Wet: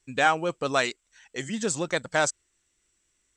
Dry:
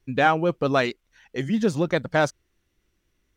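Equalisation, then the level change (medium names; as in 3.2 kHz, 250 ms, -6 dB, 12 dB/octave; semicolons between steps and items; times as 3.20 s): resonant low-pass 7.8 kHz, resonance Q 13; bass shelf 490 Hz -10.5 dB; 0.0 dB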